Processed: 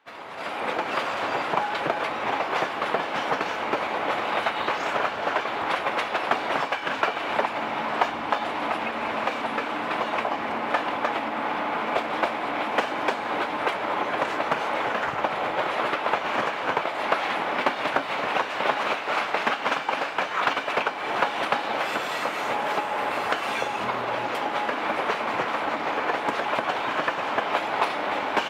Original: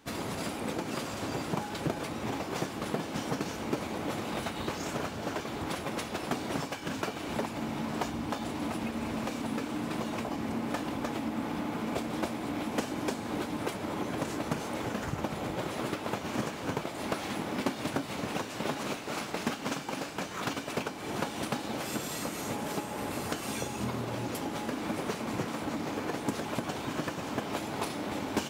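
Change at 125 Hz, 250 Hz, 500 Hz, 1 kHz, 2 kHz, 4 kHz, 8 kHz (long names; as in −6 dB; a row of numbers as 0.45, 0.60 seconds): −7.0, −2.0, +8.0, +13.0, +13.0, +7.5, −4.5 decibels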